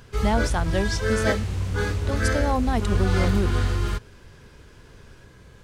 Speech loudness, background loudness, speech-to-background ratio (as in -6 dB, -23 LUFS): -28.0 LUFS, -25.5 LUFS, -2.5 dB